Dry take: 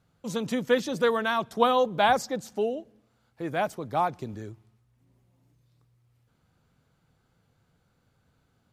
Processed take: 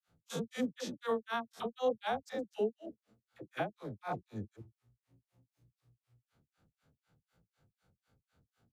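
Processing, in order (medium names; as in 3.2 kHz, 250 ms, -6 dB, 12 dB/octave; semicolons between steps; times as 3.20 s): spectrogram pixelated in time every 100 ms; band-stop 1 kHz, Q 13; peak limiter -22 dBFS, peak gain reduction 8 dB; granulator 171 ms, grains 4 per s, spray 28 ms, pitch spread up and down by 0 st; phase dispersion lows, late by 66 ms, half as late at 650 Hz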